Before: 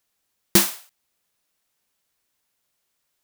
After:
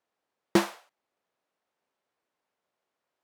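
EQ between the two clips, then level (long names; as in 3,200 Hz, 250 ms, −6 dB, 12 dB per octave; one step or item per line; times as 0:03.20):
resonant band-pass 590 Hz, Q 0.76
+2.5 dB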